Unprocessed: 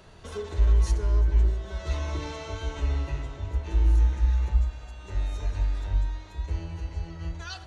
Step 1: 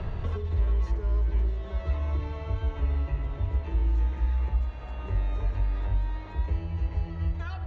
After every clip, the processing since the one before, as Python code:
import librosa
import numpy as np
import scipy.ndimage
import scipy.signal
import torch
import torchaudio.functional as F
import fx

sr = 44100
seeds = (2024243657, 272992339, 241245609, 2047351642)

y = scipy.signal.sosfilt(scipy.signal.butter(2, 2500.0, 'lowpass', fs=sr, output='sos'), x)
y = fx.notch(y, sr, hz=1500.0, q=13.0)
y = fx.band_squash(y, sr, depth_pct=100)
y = y * librosa.db_to_amplitude(-2.5)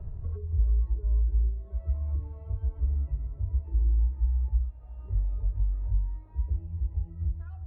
y = fx.high_shelf(x, sr, hz=2100.0, db=-11.0)
y = fx.spectral_expand(y, sr, expansion=1.5)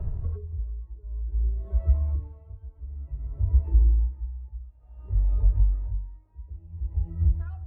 y = x * 10.0 ** (-20 * (0.5 - 0.5 * np.cos(2.0 * np.pi * 0.55 * np.arange(len(x)) / sr)) / 20.0)
y = y * librosa.db_to_amplitude(8.0)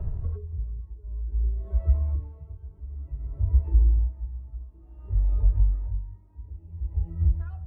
y = fx.echo_stepped(x, sr, ms=532, hz=150.0, octaves=0.7, feedback_pct=70, wet_db=-9.0)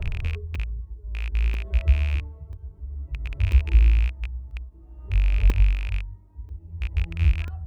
y = fx.rattle_buzz(x, sr, strikes_db=-28.0, level_db=-26.0)
y = fx.buffer_crackle(y, sr, first_s=0.55, period_s=0.99, block=64, kind='zero')
y = fx.end_taper(y, sr, db_per_s=460.0)
y = y * librosa.db_to_amplitude(2.5)